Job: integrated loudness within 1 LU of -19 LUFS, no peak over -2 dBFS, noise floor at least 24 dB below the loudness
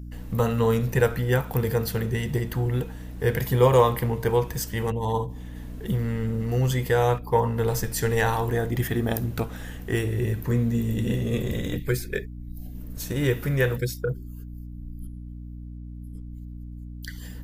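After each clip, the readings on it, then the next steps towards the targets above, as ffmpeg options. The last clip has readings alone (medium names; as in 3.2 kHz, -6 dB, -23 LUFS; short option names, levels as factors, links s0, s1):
hum 60 Hz; highest harmonic 300 Hz; hum level -36 dBFS; loudness -25.5 LUFS; peak level -6.0 dBFS; loudness target -19.0 LUFS
-> -af "bandreject=f=60:t=h:w=6,bandreject=f=120:t=h:w=6,bandreject=f=180:t=h:w=6,bandreject=f=240:t=h:w=6,bandreject=f=300:t=h:w=6"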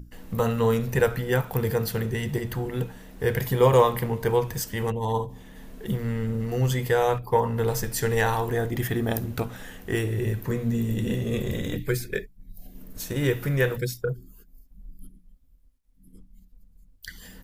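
hum not found; loudness -26.0 LUFS; peak level -6.5 dBFS; loudness target -19.0 LUFS
-> -af "volume=2.24,alimiter=limit=0.794:level=0:latency=1"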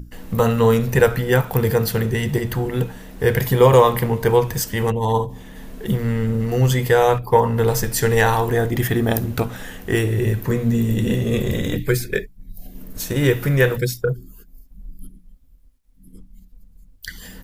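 loudness -19.0 LUFS; peak level -2.0 dBFS; noise floor -48 dBFS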